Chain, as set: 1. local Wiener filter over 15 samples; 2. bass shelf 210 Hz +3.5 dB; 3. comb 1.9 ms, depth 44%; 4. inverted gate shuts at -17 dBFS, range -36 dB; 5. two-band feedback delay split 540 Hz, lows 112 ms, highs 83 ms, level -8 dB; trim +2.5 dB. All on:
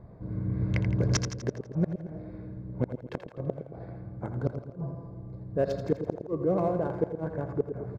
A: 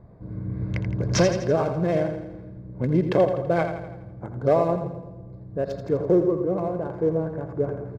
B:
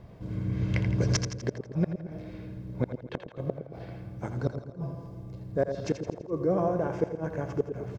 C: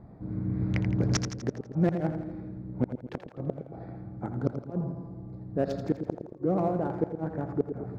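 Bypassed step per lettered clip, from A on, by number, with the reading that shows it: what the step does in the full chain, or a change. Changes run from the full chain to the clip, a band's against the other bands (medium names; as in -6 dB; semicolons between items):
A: 4, momentary loudness spread change +3 LU; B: 1, 2 kHz band +2.0 dB; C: 3, 250 Hz band +3.0 dB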